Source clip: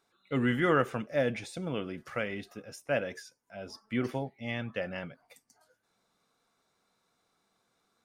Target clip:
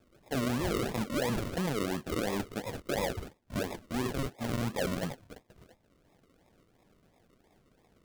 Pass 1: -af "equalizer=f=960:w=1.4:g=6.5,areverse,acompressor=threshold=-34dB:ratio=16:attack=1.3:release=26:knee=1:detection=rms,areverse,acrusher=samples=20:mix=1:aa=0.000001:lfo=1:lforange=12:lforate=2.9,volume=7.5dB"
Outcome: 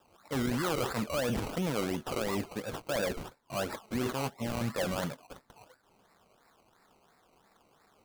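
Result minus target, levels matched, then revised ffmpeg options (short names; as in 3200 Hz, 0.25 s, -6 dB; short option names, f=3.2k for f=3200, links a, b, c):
decimation with a swept rate: distortion -6 dB
-af "equalizer=f=960:w=1.4:g=6.5,areverse,acompressor=threshold=-34dB:ratio=16:attack=1.3:release=26:knee=1:detection=rms,areverse,acrusher=samples=42:mix=1:aa=0.000001:lfo=1:lforange=25.2:lforate=2.9,volume=7.5dB"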